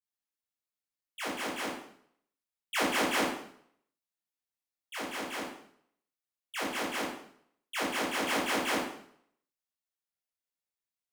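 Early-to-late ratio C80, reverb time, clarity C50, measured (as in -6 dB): 5.5 dB, 0.65 s, 1.5 dB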